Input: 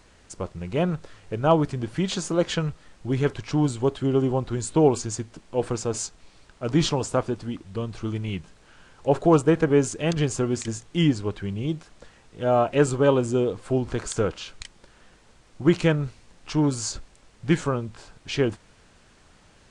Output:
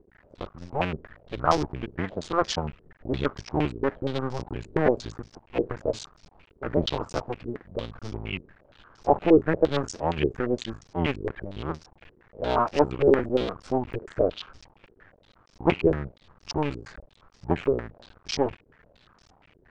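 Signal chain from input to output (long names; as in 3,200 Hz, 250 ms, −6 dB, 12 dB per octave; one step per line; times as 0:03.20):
sub-harmonics by changed cycles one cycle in 2, muted
low-pass on a step sequencer 8.6 Hz 410–5,400 Hz
level −3 dB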